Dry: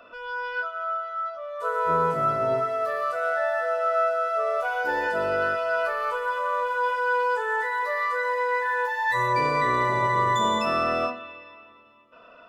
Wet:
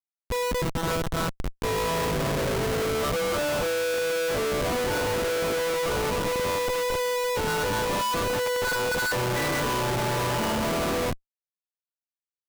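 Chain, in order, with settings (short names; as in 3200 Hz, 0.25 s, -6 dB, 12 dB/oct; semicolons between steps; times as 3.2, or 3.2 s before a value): formant shift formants -3 st; Schmitt trigger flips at -27.5 dBFS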